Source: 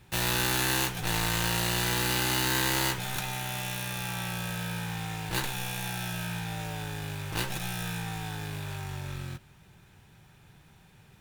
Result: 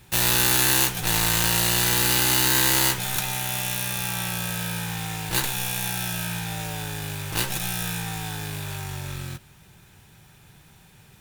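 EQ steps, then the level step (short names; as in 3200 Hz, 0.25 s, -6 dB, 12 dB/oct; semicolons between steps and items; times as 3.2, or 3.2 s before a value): high shelf 4900 Hz +8.5 dB; +3.5 dB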